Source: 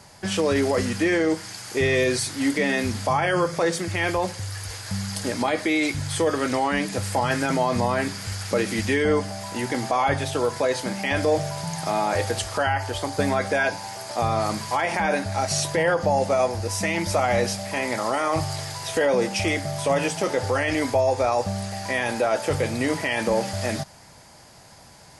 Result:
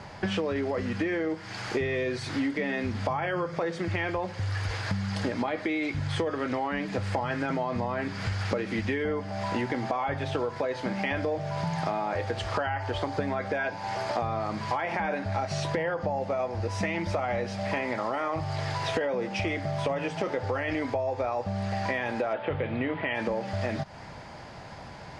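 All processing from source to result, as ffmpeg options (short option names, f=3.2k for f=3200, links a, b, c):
-filter_complex "[0:a]asettb=1/sr,asplit=3[a][b][c];[a]atrim=end=22.334[d];[b]atrim=start=22.33:end=23.15,asetpts=PTS-STARTPTS,afade=t=in:d=0.004:c=qsin,afade=t=out:st=0.816:d=0.004:c=qsin,acrossover=split=2600[e][f];[f]acompressor=threshold=-47dB:ratio=4:attack=1:release=60[g];[e][g]amix=inputs=2:normalize=0,highshelf=f=4.8k:t=q:w=3:g=-13[h];[c]atrim=start=23.146[i];[d][h]acrossfade=d=0.004:c1=hsin:c2=qsin[j];[j][i]acrossfade=d=0.004:c1=qsin:c2=hsin,lowpass=2.9k,acompressor=threshold=-33dB:ratio=12,volume=7dB"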